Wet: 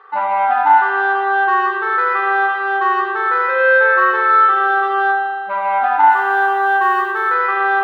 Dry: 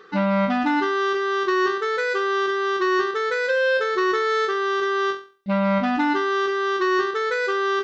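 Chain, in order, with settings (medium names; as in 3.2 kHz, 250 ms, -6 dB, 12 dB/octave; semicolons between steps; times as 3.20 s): low-pass 2.1 kHz 12 dB/octave; 6.11–7.33 s: modulation noise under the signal 33 dB; resonant high-pass 830 Hz, resonance Q 4.9; spring tank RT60 2.1 s, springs 38 ms, chirp 55 ms, DRR -3 dB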